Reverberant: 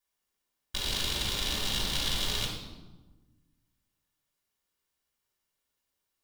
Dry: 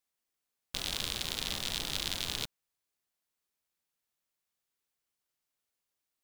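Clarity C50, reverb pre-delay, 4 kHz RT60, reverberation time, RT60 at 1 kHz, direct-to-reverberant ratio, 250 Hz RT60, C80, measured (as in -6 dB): 2.0 dB, 3 ms, 0.80 s, 1.2 s, 1.1 s, -5.0 dB, 1.7 s, 5.5 dB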